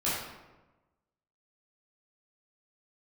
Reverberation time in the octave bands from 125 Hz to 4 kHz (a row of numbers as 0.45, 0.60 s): 1.3, 1.3, 1.2, 1.1, 0.90, 0.65 s